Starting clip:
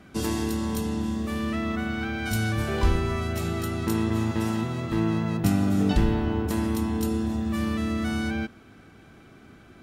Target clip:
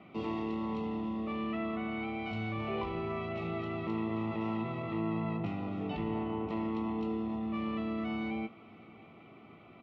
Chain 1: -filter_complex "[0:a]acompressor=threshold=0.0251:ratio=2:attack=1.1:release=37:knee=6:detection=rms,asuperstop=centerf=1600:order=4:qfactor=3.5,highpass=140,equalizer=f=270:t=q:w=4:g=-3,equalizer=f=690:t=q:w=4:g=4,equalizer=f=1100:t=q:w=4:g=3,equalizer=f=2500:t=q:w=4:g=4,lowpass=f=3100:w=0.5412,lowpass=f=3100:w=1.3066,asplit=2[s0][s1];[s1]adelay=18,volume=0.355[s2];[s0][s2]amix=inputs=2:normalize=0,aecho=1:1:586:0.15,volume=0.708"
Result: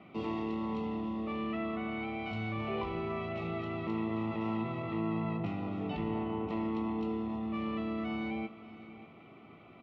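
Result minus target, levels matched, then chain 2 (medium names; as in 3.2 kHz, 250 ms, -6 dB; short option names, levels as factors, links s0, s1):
echo-to-direct +8.5 dB
-filter_complex "[0:a]acompressor=threshold=0.0251:ratio=2:attack=1.1:release=37:knee=6:detection=rms,asuperstop=centerf=1600:order=4:qfactor=3.5,highpass=140,equalizer=f=270:t=q:w=4:g=-3,equalizer=f=690:t=q:w=4:g=4,equalizer=f=1100:t=q:w=4:g=3,equalizer=f=2500:t=q:w=4:g=4,lowpass=f=3100:w=0.5412,lowpass=f=3100:w=1.3066,asplit=2[s0][s1];[s1]adelay=18,volume=0.355[s2];[s0][s2]amix=inputs=2:normalize=0,aecho=1:1:586:0.0562,volume=0.708"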